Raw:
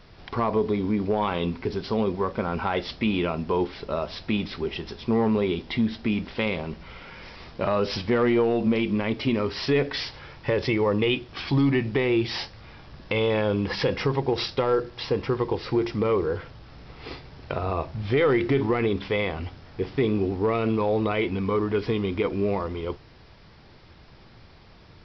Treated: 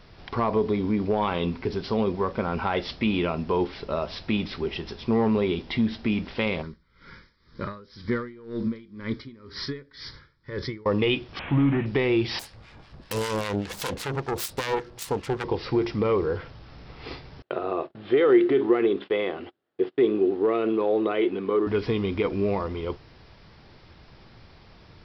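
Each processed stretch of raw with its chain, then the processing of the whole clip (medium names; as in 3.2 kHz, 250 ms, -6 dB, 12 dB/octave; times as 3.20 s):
6.62–10.86 s: static phaser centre 2.7 kHz, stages 6 + logarithmic tremolo 2 Hz, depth 23 dB
11.39–11.86 s: one-bit delta coder 16 kbps, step -34.5 dBFS + band-stop 400 Hz, Q 9.4
12.39–15.44 s: self-modulated delay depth 0.61 ms + harmonic tremolo 5.1 Hz, crossover 1.1 kHz
17.42–21.67 s: gate -37 dBFS, range -29 dB + cabinet simulation 300–3600 Hz, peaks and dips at 360 Hz +9 dB, 940 Hz -6 dB, 2.3 kHz -7 dB
whole clip: none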